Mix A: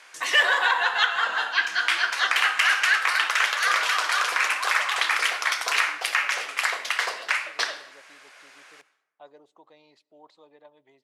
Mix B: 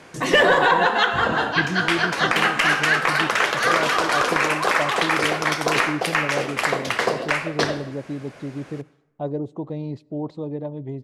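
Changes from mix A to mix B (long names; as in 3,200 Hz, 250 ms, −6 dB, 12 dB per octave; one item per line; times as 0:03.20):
speech +5.5 dB
master: remove high-pass filter 1,300 Hz 12 dB per octave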